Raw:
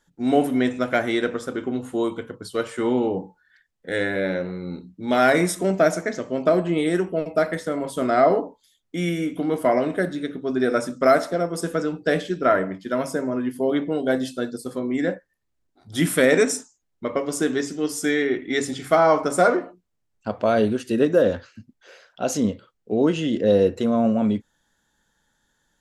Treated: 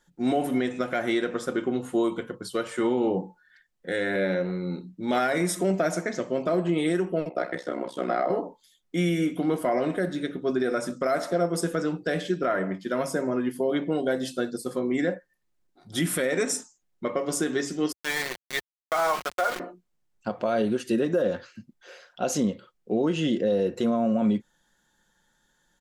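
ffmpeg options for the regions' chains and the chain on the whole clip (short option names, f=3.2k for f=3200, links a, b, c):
-filter_complex "[0:a]asettb=1/sr,asplit=3[a][b][c];[a]atrim=end=7.294[d];[b]atrim=start=7.29:end=8.3,asetpts=PTS-STARTPTS,afade=t=in:d=0.004:c=qsin,afade=t=out:st=1.006:d=0.004:c=qsin,acrossover=split=180 5600:gain=0.0794 1 0.2[e][f][g];[e][f][g]amix=inputs=3:normalize=0,bandreject=f=255.7:t=h:w=4,bandreject=f=511.4:t=h:w=4,bandreject=f=767.1:t=h:w=4,bandreject=f=1.0228k:t=h:w=4,bandreject=f=1.2785k:t=h:w=4,bandreject=f=1.5342k:t=h:w=4,bandreject=f=1.7899k:t=h:w=4,bandreject=f=2.0456k:t=h:w=4,bandreject=f=2.3013k:t=h:w=4,bandreject=f=2.557k:t=h:w=4,bandreject=f=2.8127k:t=h:w=4,bandreject=f=3.0684k:t=h:w=4,bandreject=f=3.3241k:t=h:w=4,bandreject=f=3.5798k:t=h:w=4,bandreject=f=3.8355k:t=h:w=4,bandreject=f=4.0912k:t=h:w=4,bandreject=f=4.3469k:t=h:w=4,bandreject=f=4.6026k:t=h:w=4,bandreject=f=4.8583k:t=h:w=4,bandreject=f=5.114k:t=h:w=4,bandreject=f=5.3697k:t=h:w=4,bandreject=f=5.6254k:t=h:w=4,bandreject=f=5.8811k:t=h:w=4,bandreject=f=6.1368k:t=h:w=4,bandreject=f=6.3925k:t=h:w=4,bandreject=f=6.6482k:t=h:w=4,bandreject=f=6.9039k:t=h:w=4,bandreject=f=7.1596k:t=h:w=4,bandreject=f=7.4153k:t=h:w=4,bandreject=f=7.671k:t=h:w=4,bandreject=f=7.9267k:t=h:w=4,bandreject=f=8.1824k:t=h:w=4,bandreject=f=8.4381k:t=h:w=4,bandreject=f=8.6938k:t=h:w=4,bandreject=f=8.9495k:t=h:w=4,bandreject=f=9.2052k:t=h:w=4,bandreject=f=9.4609k:t=h:w=4,bandreject=f=9.7166k:t=h:w=4,bandreject=f=9.9723k:t=h:w=4,bandreject=f=10.228k:t=h:w=4,tremolo=f=63:d=1[h];[c]atrim=start=8.296[i];[d][h]acrossfade=d=0.004:c1=hsin:c2=qsin[j];[j][i]acrossfade=d=0.004:c1=qsin:c2=hsin,asettb=1/sr,asplit=3[k][l][m];[k]atrim=end=17.924[n];[l]atrim=start=17.92:end=19.6,asetpts=PTS-STARTPTS,afade=t=in:d=0.004:c=qsin,afade=t=out:st=1.676:d=0.004:c=qsin,highpass=700,lowpass=3.7k,aeval=exprs='val(0)*gte(abs(val(0)),0.0501)':c=same[o];[m]atrim=start=19.596[p];[n][o]acrossfade=d=0.004:c1=hsin:c2=qsin[q];[q][p]acrossfade=d=0.004:c1=qsin:c2=hsin,equalizer=f=75:t=o:w=0.51:g=-14.5,aecho=1:1:5.6:0.31,alimiter=limit=-15.5dB:level=0:latency=1:release=146"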